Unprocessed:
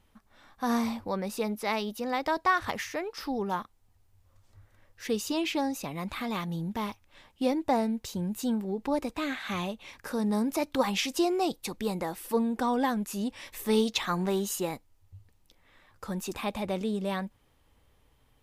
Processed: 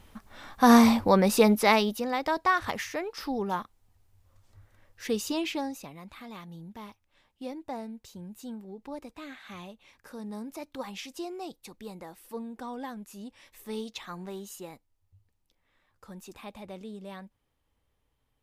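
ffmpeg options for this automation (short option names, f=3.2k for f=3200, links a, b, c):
-af "volume=11dB,afade=t=out:st=1.51:d=0.58:silence=0.298538,afade=t=out:st=5.25:d=0.75:silence=0.266073"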